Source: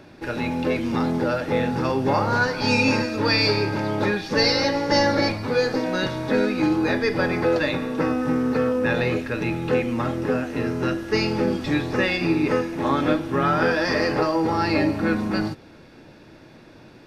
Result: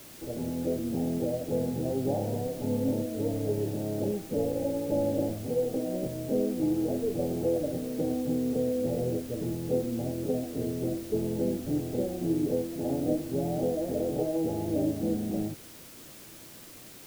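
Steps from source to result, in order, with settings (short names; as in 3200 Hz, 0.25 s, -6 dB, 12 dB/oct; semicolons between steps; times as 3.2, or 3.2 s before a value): steep low-pass 750 Hz 72 dB/oct; added noise white -43 dBFS; gain -6.5 dB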